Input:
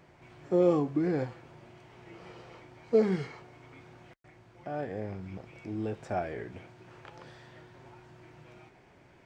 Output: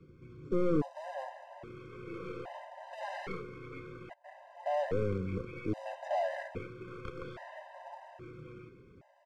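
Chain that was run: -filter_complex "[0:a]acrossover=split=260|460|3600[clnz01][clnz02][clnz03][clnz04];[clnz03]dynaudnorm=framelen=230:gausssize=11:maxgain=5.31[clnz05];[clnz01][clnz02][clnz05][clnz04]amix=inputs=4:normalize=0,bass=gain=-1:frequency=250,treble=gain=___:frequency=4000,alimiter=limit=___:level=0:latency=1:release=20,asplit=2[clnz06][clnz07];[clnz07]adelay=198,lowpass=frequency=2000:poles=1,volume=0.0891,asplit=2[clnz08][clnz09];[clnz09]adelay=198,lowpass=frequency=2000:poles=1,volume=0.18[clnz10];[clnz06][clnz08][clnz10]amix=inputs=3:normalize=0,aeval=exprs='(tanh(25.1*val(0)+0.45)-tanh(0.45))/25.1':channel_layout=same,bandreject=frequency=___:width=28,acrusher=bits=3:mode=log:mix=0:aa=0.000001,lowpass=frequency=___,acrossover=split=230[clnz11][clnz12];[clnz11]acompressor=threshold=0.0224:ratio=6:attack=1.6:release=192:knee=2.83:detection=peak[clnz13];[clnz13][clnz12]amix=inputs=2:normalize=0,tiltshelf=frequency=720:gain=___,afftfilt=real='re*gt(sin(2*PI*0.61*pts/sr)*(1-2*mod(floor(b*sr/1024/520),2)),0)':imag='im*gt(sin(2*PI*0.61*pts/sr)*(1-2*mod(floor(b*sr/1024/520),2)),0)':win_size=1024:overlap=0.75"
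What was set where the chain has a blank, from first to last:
3, 0.2, 3900, 6200, 8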